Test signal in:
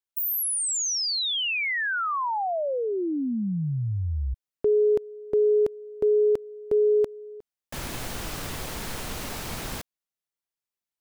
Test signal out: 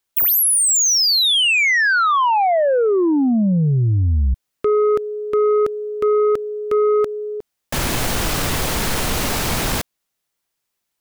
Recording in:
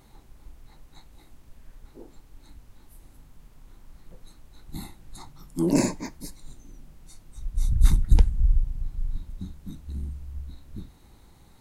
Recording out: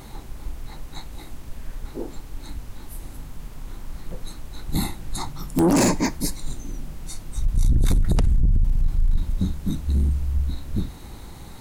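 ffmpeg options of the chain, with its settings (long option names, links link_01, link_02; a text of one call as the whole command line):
ffmpeg -i in.wav -af "acompressor=threshold=-22dB:ratio=16:attack=0.94:release=37:knee=6:detection=peak,aeval=exprs='0.141*sin(PI/2*2.24*val(0)/0.141)':channel_layout=same,volume=3.5dB" out.wav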